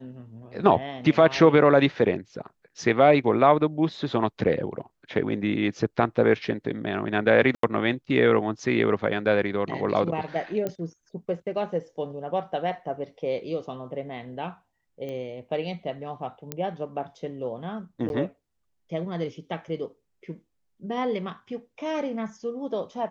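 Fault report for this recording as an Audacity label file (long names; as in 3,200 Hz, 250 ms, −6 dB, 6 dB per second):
7.550000	7.630000	drop-out 83 ms
10.670000	10.670000	click −16 dBFS
15.090000	15.090000	click −25 dBFS
16.520000	16.520000	click −13 dBFS
18.090000	18.100000	drop-out 11 ms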